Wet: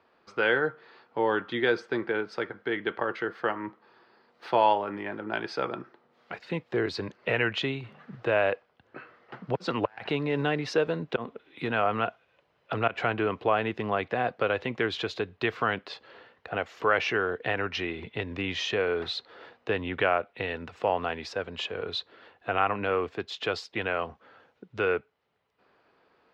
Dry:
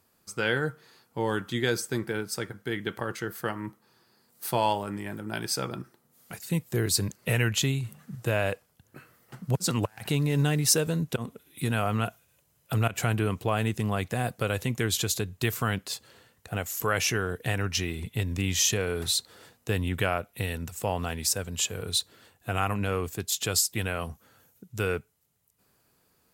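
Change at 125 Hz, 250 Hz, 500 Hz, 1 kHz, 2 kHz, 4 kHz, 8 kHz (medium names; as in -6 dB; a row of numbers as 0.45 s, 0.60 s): -10.5 dB, -2.0 dB, +3.5 dB, +4.0 dB, +3.0 dB, -4.0 dB, under -20 dB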